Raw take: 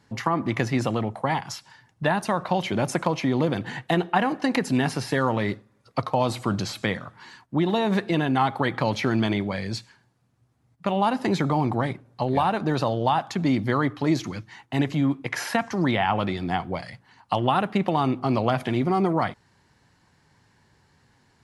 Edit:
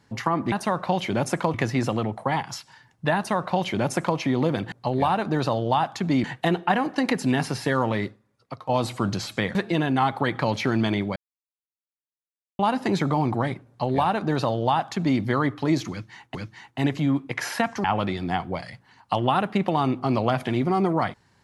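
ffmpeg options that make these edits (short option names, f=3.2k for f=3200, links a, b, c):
-filter_complex "[0:a]asplit=11[a][b][c][d][e][f][g][h][i][j][k];[a]atrim=end=0.522[l];[b]atrim=start=2.138:end=3.162[m];[c]atrim=start=0.518:end=3.702[n];[d]atrim=start=12.068:end=13.592[o];[e]atrim=start=3.698:end=6.15,asetpts=PTS-STARTPTS,afade=t=out:st=1.712:d=0.74:c=qua:silence=0.266073[p];[f]atrim=start=6.15:end=7.012,asetpts=PTS-STARTPTS,afade=t=in:d=0.004:c=hsin:silence=0.266073[q];[g]atrim=start=7.938:end=9.55,asetpts=PTS-STARTPTS,afade=t=out:st=1.608:d=0.004:c=hsin[r];[h]atrim=start=9.55:end=10.98,asetpts=PTS-STARTPTS,volume=0[s];[i]atrim=start=10.98:end=14.742,asetpts=PTS-STARTPTS,afade=t=in:d=0.004:c=hsin[t];[j]atrim=start=14.298:end=15.792[u];[k]atrim=start=16.038[v];[l][m]acrossfade=d=0.004:c1=hsin:c2=hsin[w];[w][n]acrossfade=d=0.004:c1=hsin:c2=hsin[x];[x][o]acrossfade=d=0.004:c1=hsin:c2=hsin[y];[p][q]concat=n=2:v=0:a=1[z];[y][z]acrossfade=d=0.004:c1=hsin:c2=hsin[aa];[r][s][t]concat=n=3:v=0:a=1[ab];[aa][ab]acrossfade=d=0.004:c1=hsin:c2=hsin[ac];[ac][u]acrossfade=d=0.004:c1=hsin:c2=hsin[ad];[ad][v]acrossfade=d=0.004:c1=hsin:c2=hsin"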